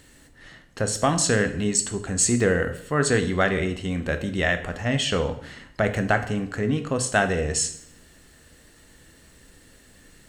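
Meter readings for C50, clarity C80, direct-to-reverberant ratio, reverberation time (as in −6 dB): 11.5 dB, 14.5 dB, 7.5 dB, 0.65 s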